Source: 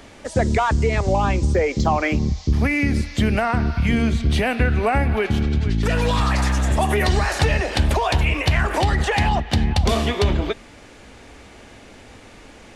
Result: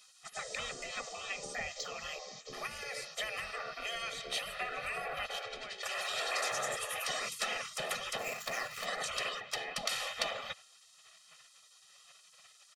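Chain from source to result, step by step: 8.18–8.86 s: median filter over 15 samples; spectral gate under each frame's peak -20 dB weak; bass shelf 170 Hz -7 dB; comb 1.6 ms, depth 92%; trim -8 dB

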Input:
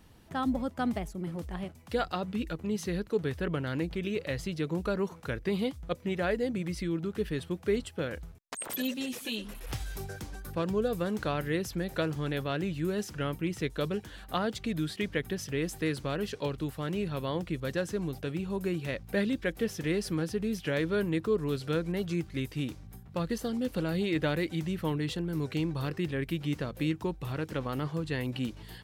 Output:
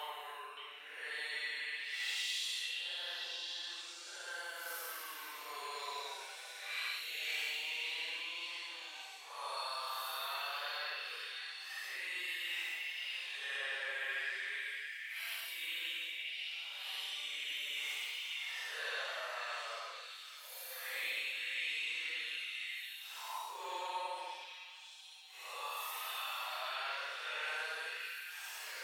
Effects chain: Bessel high-pass 1.1 kHz, order 8; compression, threshold -46 dBFS, peak gain reduction 15 dB; Paulstretch 11×, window 0.05 s, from 24.90 s; repeats whose band climbs or falls 570 ms, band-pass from 2.5 kHz, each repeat 0.7 oct, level -0.5 dB; trim +7.5 dB

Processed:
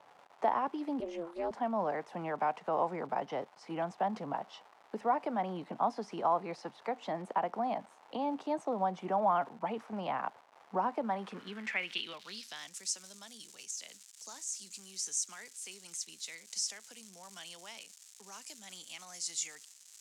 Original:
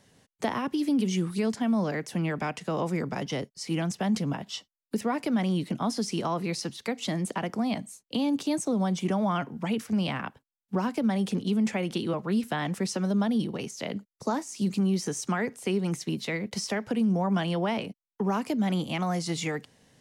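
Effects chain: crackle 470 per s -36 dBFS; 1.00–1.51 s: ring modulator 170 Hz; band-pass sweep 820 Hz -> 7.2 kHz, 11.02–12.76 s; trim +4.5 dB

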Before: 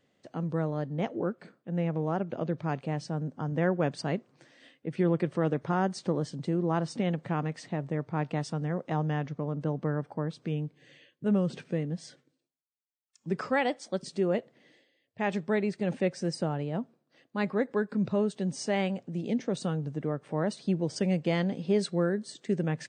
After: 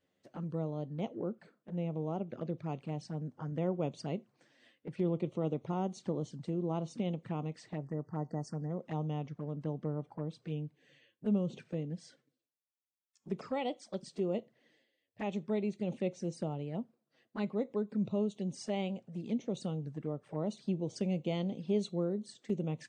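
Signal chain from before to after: spectral selection erased 7.78–8.70 s, 2–4.4 kHz; touch-sensitive flanger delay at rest 11.6 ms, full sweep at -27.5 dBFS; on a send: reverberation RT60 0.25 s, pre-delay 5 ms, DRR 17 dB; on the sum: trim -5.5 dB

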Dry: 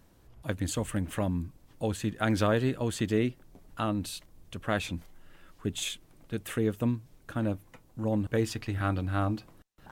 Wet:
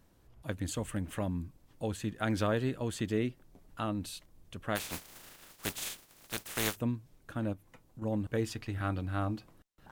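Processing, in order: 4.75–6.75 s: spectral contrast reduction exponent 0.29; 7.53–8.02 s: compression, threshold -41 dBFS, peak gain reduction 8 dB; trim -4.5 dB

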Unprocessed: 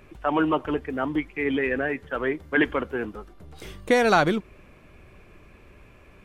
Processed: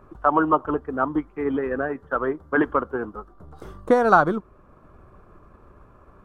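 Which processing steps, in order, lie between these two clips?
resonant high shelf 1.7 kHz -10.5 dB, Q 3; transient shaper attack +3 dB, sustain -3 dB

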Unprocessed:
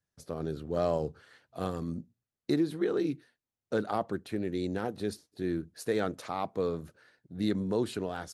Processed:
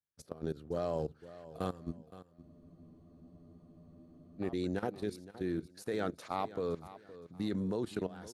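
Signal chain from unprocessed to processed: level held to a coarse grid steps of 17 dB; feedback delay 517 ms, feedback 31%, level -16 dB; spectral freeze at 2.44 s, 1.97 s

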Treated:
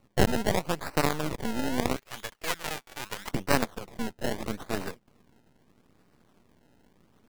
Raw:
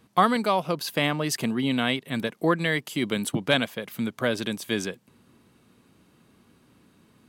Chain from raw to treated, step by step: decimation with a swept rate 26×, swing 100% 0.78 Hz; 1.96–3.31 s: Bessel high-pass 860 Hz, order 2; half-wave rectifier

